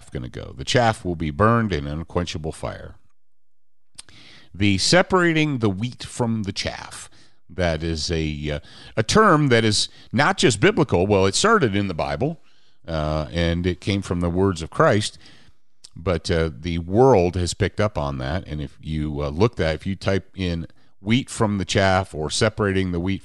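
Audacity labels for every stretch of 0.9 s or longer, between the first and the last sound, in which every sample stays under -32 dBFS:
2.900000	3.990000	silence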